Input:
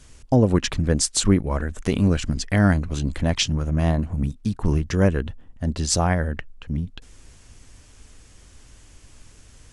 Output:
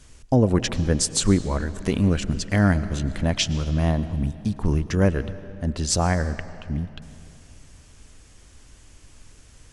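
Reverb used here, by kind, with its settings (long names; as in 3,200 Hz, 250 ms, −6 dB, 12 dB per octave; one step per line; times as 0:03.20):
comb and all-pass reverb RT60 2.7 s, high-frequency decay 0.75×, pre-delay 75 ms, DRR 14 dB
level −1 dB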